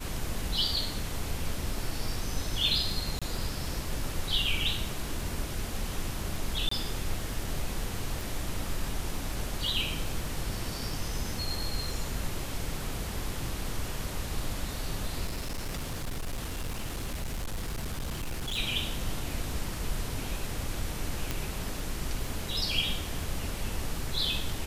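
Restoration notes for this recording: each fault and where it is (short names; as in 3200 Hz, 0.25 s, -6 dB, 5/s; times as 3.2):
crackle 12/s -38 dBFS
3.19–3.22 gap 26 ms
6.69–6.71 gap 24 ms
8.21 pop
15.26–18.59 clipped -30 dBFS
21.31 pop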